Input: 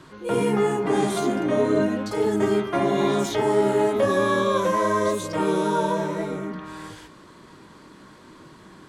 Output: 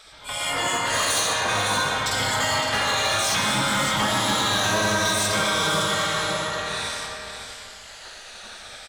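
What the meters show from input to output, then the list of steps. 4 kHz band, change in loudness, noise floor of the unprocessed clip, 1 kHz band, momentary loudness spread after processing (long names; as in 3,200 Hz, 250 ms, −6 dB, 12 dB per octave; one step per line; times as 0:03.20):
+14.5 dB, +0.5 dB, −48 dBFS, +1.5 dB, 18 LU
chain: rippled gain that drifts along the octave scale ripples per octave 1.6, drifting −0.57 Hz, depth 10 dB
graphic EQ with 10 bands 125 Hz +9 dB, 1,000 Hz +8 dB, 4,000 Hz +10 dB, 8,000 Hz +6 dB
gate on every frequency bin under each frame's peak −15 dB weak
parametric band 340 Hz −7 dB 1 octave
on a send: single-tap delay 562 ms −9 dB
on the sum: downward compressor 2.5 to 1, threshold −26 dBFS, peak gain reduction 4.5 dB
soft clipping −14.5 dBFS, distortion −32 dB
automatic gain control gain up to 6.5 dB
comb and all-pass reverb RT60 2.2 s, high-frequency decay 0.65×, pre-delay 35 ms, DRR 1.5 dB
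hard clipping −18 dBFS, distortion −14 dB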